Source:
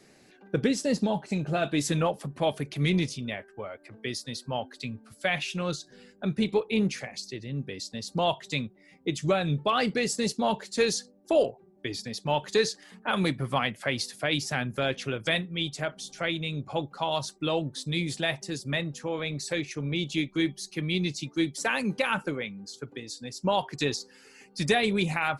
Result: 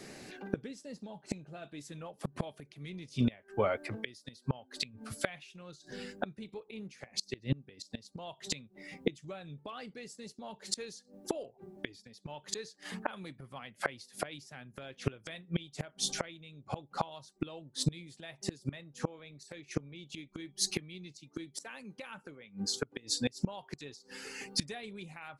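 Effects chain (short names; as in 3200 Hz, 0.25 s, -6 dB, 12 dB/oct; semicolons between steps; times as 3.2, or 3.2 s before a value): flipped gate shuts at -26 dBFS, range -28 dB; gain +8.5 dB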